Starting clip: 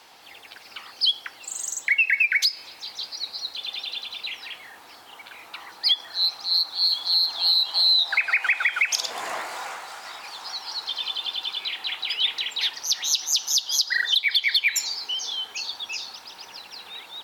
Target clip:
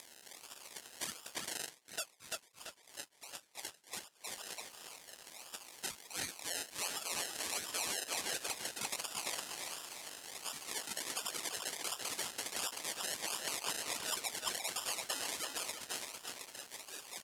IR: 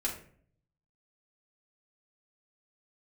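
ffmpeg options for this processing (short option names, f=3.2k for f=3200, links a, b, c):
-filter_complex "[0:a]acompressor=threshold=-26dB:ratio=2,highshelf=f=3.4k:g=11,bandreject=f=102.1:t=h:w=4,bandreject=f=204.2:t=h:w=4,bandreject=f=306.3:t=h:w=4,bandreject=f=408.4:t=h:w=4,bandreject=f=510.5:t=h:w=4,bandreject=f=612.6:t=h:w=4,bandreject=f=714.7:t=h:w=4,bandreject=f=816.8:t=h:w=4,bandreject=f=918.9:t=h:w=4,bandreject=f=1.021k:t=h:w=4,bandreject=f=1.1231k:t=h:w=4,bandreject=f=1.2252k:t=h:w=4,bandreject=f=1.3273k:t=h:w=4,bandreject=f=1.4294k:t=h:w=4,bandreject=f=1.5315k:t=h:w=4,bandreject=f=1.6336k:t=h:w=4,bandreject=f=1.7357k:t=h:w=4,bandreject=f=1.8378k:t=h:w=4,bandreject=f=1.9399k:t=h:w=4,bandreject=f=2.042k:t=h:w=4,bandreject=f=2.1441k:t=h:w=4,bandreject=f=2.2462k:t=h:w=4,bandreject=f=2.3483k:t=h:w=4,flanger=delay=6.3:depth=9.8:regen=34:speed=2:shape=sinusoidal,acrusher=samples=30:mix=1:aa=0.000001:lfo=1:lforange=18:lforate=1.4,acompressor=mode=upward:threshold=-35dB:ratio=2.5,aderivative,asplit=2[a][b];[b]adelay=338,lowpass=f=5k:p=1,volume=-4.5dB,asplit=2[c][d];[d]adelay=338,lowpass=f=5k:p=1,volume=0.42,asplit=2[e][f];[f]adelay=338,lowpass=f=5k:p=1,volume=0.42,asplit=2[g][h];[h]adelay=338,lowpass=f=5k:p=1,volume=0.42,asplit=2[i][j];[j]adelay=338,lowpass=f=5k:p=1,volume=0.42[k];[a][c][e][g][i][k]amix=inputs=6:normalize=0,alimiter=limit=-18.5dB:level=0:latency=1:release=109,lowpass=f=11k:w=0.5412,lowpass=f=11k:w=1.3066,aeval=exprs='sgn(val(0))*max(abs(val(0))-0.00119,0)':c=same,asettb=1/sr,asplit=3[l][m][n];[l]atrim=end=1.644[o];[m]atrim=start=1.64:end=4.3,asetpts=PTS-STARTPTS,afade=t=in:d=0.004:c=qsin,afade=t=out:st=2.656:d=0.004:c=qsin,aeval=exprs='val(0)*pow(10,-28*(0.5-0.5*cos(2*PI*3*n/s))/20)':c=same[p];[n]atrim=start=4.296[q];[o][p]acrossfade=d=0.004:c1=hsin:c2=qsin[r];[r][q]acrossfade=d=0.004:c1=qsin:c2=hsin,volume=4dB"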